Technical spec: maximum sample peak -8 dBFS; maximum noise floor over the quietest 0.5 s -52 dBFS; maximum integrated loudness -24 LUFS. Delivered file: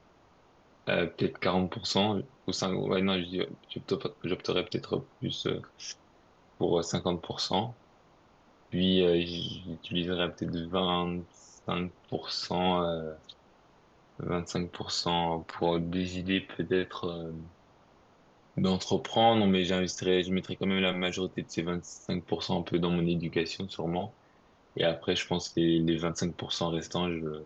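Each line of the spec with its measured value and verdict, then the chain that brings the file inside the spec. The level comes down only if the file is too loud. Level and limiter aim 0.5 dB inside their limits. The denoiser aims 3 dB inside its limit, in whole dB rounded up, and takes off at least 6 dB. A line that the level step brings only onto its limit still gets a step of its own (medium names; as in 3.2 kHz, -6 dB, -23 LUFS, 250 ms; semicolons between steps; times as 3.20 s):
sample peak -12.0 dBFS: pass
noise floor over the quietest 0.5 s -62 dBFS: pass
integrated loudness -30.5 LUFS: pass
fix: none needed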